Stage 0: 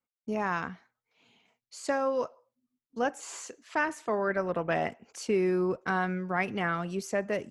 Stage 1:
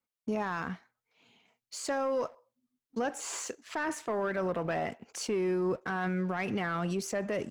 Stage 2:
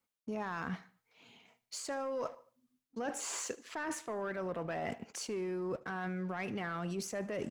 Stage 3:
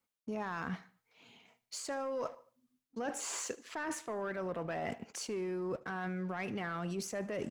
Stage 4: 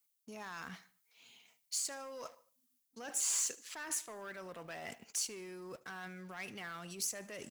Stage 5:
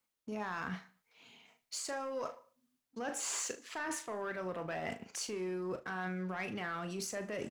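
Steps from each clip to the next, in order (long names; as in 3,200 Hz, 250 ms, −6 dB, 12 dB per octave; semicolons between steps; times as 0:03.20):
de-essing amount 95%; leveller curve on the samples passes 1; brickwall limiter −26.5 dBFS, peak gain reduction 11 dB; level +2 dB
reversed playback; downward compressor 6 to 1, threshold −40 dBFS, peak gain reduction 12 dB; reversed playback; repeating echo 75 ms, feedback 41%, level −21 dB; level +4 dB
no processing that can be heard
first-order pre-emphasis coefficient 0.9; level +8 dB
low-pass filter 1,400 Hz 6 dB per octave; double-tracking delay 38 ms −9.5 dB; level +8.5 dB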